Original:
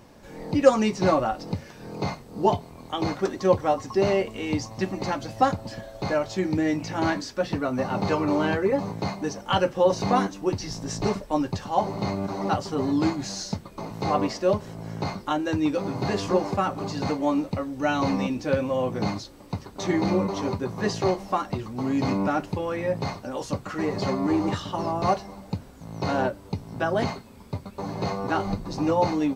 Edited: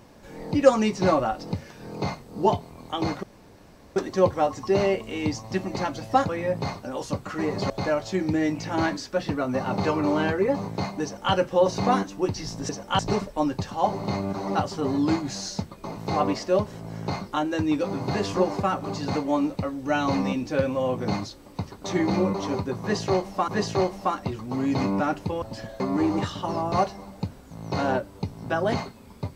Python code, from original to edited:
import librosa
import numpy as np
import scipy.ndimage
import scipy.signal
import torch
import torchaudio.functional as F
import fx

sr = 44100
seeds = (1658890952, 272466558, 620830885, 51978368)

y = fx.edit(x, sr, fx.insert_room_tone(at_s=3.23, length_s=0.73),
    fx.swap(start_s=5.56, length_s=0.38, other_s=22.69, other_length_s=1.41),
    fx.duplicate(start_s=9.27, length_s=0.3, to_s=10.93),
    fx.repeat(start_s=20.75, length_s=0.67, count=2), tone=tone)